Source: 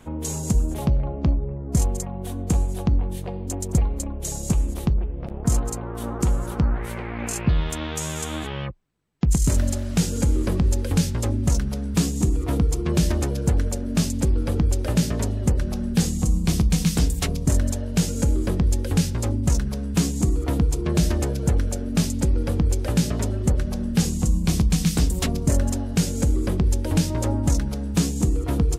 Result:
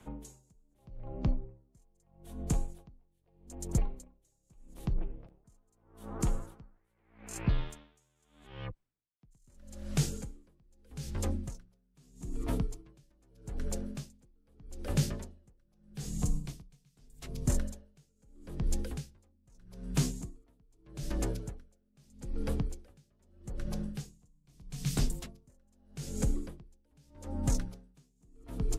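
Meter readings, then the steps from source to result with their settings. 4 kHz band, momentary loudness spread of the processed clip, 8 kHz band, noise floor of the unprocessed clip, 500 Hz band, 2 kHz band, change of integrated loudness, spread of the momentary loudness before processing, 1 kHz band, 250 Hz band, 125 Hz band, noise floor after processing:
-15.5 dB, 19 LU, -15.5 dB, -31 dBFS, -15.5 dB, -15.5 dB, -14.0 dB, 6 LU, -15.5 dB, -16.5 dB, -15.5 dB, -73 dBFS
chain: frequency shift -25 Hz; dB-linear tremolo 0.8 Hz, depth 38 dB; gain -8 dB

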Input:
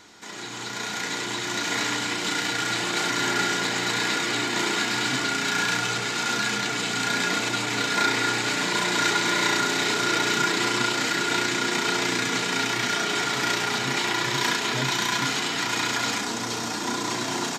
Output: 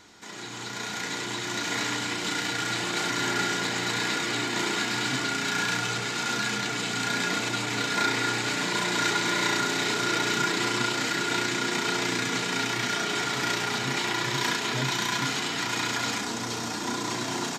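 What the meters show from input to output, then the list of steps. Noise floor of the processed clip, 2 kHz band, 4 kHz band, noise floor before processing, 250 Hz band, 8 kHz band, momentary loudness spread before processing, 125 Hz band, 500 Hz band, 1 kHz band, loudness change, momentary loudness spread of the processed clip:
-34 dBFS, -3.0 dB, -3.0 dB, -31 dBFS, -2.0 dB, -3.0 dB, 6 LU, 0.0 dB, -2.5 dB, -3.0 dB, -3.0 dB, 6 LU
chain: low shelf 140 Hz +5.5 dB; gain -3 dB

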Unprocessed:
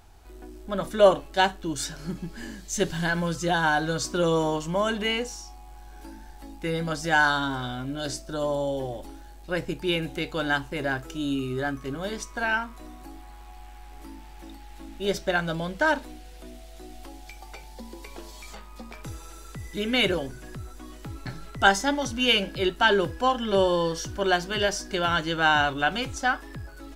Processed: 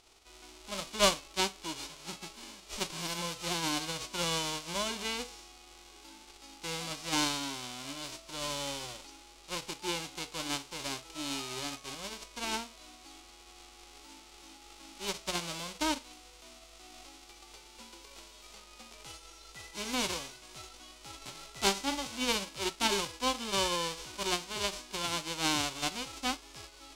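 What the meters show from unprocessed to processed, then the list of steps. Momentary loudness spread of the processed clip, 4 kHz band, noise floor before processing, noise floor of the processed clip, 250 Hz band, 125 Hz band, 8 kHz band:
22 LU, -3.5 dB, -45 dBFS, -55 dBFS, -10.0 dB, -13.5 dB, +1.0 dB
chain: spectral whitening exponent 0.1; LPF 6200 Hz 12 dB/oct; bell 1700 Hz -9.5 dB 0.36 oct; gain -6.5 dB

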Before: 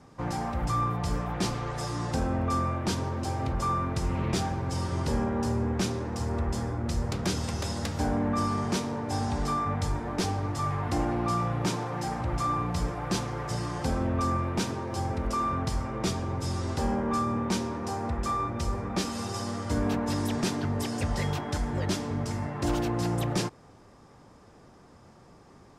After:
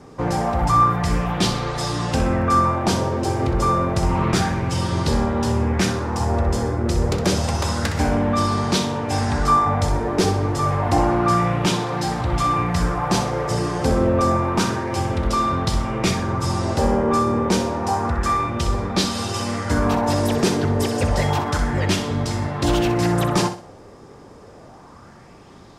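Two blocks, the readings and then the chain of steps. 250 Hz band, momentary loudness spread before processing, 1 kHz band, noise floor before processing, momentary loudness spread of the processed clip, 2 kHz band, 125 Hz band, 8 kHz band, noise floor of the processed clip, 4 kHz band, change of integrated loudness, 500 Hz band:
+8.5 dB, 4 LU, +10.5 dB, -54 dBFS, 5 LU, +10.5 dB, +8.0 dB, +9.0 dB, -44 dBFS, +10.5 dB, +9.5 dB, +11.0 dB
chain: on a send: flutter echo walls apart 10.8 m, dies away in 0.38 s; on the sum: LFO bell 0.29 Hz 400–4000 Hz +7 dB; gain +8 dB

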